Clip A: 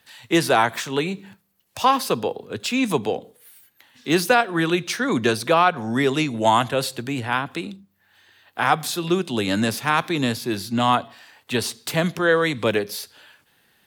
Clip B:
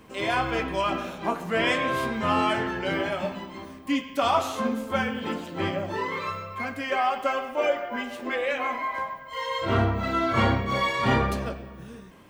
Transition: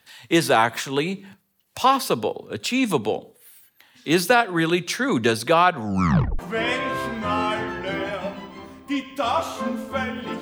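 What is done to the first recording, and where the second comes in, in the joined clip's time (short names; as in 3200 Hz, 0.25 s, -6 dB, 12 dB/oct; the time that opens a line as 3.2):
clip A
5.84 tape stop 0.55 s
6.39 switch to clip B from 1.38 s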